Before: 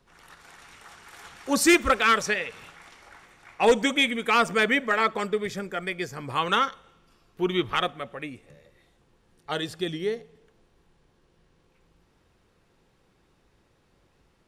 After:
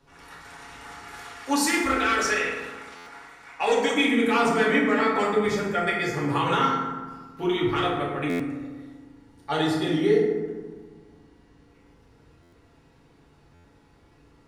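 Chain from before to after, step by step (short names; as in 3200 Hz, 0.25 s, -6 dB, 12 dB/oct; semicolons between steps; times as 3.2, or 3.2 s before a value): 1.18–3.94 low shelf 380 Hz -12 dB; limiter -19.5 dBFS, peak gain reduction 9.5 dB; high shelf 11000 Hz -4.5 dB; reverb RT60 1.4 s, pre-delay 4 ms, DRR -5.5 dB; stuck buffer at 2.96/8.29/12.42/13.54, samples 512, times 8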